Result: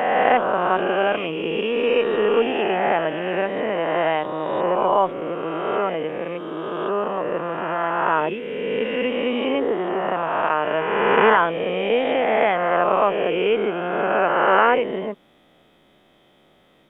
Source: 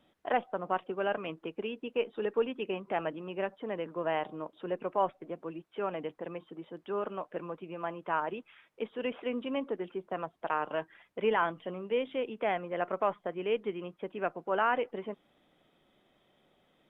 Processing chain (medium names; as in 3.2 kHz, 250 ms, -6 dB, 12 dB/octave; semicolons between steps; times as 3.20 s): reverse spectral sustain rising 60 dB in 2.40 s; trim +8.5 dB